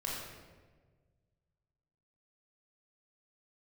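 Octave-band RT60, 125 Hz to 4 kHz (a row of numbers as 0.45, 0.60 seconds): 2.4, 1.8, 1.7, 1.2, 1.1, 0.90 seconds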